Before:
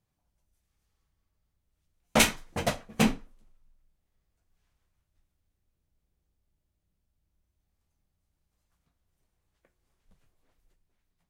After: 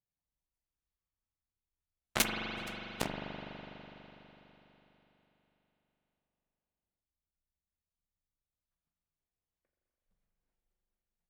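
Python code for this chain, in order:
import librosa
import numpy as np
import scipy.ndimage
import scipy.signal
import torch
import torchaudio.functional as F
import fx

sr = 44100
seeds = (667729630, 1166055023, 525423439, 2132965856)

y = fx.cheby_harmonics(x, sr, harmonics=(3, 5), levels_db=(-8, -35), full_scale_db=-7.5)
y = fx.rev_spring(y, sr, rt60_s=3.9, pass_ms=(41,), chirp_ms=40, drr_db=0.5)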